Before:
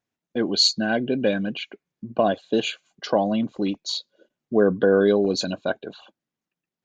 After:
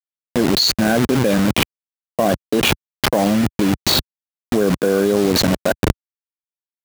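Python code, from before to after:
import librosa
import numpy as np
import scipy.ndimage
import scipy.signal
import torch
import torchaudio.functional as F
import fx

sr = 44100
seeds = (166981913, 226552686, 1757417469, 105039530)

y = fx.delta_hold(x, sr, step_db=-23.5)
y = scipy.signal.sosfilt(scipy.signal.butter(2, 76.0, 'highpass', fs=sr, output='sos'), y)
y = fx.low_shelf(y, sr, hz=180.0, db=4.0)
y = fx.env_flatten(y, sr, amount_pct=100)
y = F.gain(torch.from_numpy(y), -1.0).numpy()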